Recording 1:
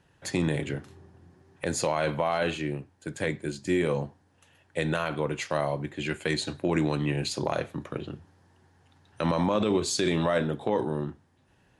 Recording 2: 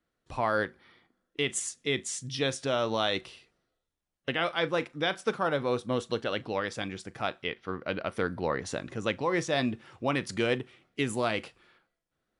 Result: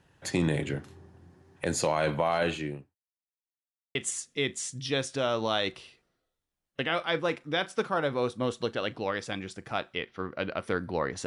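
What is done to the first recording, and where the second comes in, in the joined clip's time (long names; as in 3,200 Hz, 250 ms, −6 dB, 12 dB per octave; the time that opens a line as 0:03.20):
recording 1
0:02.35–0:02.95: fade out equal-power
0:02.95–0:03.95: silence
0:03.95: continue with recording 2 from 0:01.44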